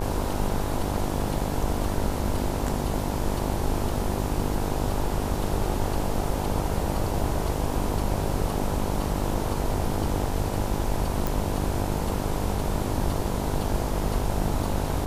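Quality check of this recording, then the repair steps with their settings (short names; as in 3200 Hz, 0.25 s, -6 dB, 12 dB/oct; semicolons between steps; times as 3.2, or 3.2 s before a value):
buzz 50 Hz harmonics 20 -30 dBFS
11.27 pop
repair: de-click; de-hum 50 Hz, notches 20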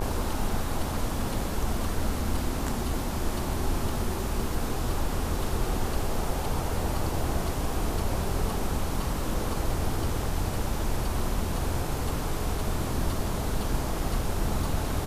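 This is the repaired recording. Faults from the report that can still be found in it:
none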